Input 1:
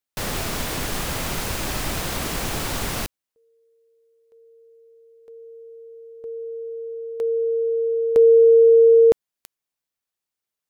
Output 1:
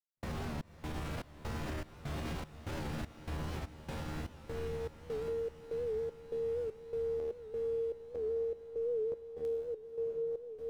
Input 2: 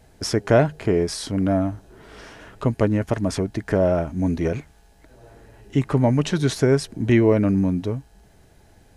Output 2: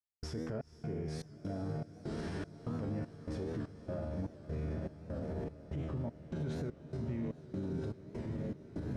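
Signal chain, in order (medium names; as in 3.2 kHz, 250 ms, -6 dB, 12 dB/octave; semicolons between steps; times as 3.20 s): recorder AGC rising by 9.9 dB/s; low-pass 1.8 kHz 6 dB/octave; peaking EQ 110 Hz +8.5 dB 2.6 oct; feedback comb 77 Hz, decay 1.2 s, harmonics all, mix 90%; reverse; compression, threshold -32 dBFS; reverse; echo that smears into a reverb 1119 ms, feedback 55%, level -5.5 dB; trance gate "...xxxxx" 197 bpm -60 dB; peak limiter -35 dBFS; on a send: echo that smears into a reverb 496 ms, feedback 78%, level -15.5 dB; on the sum: warped record 78 rpm, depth 100 cents; trim +4 dB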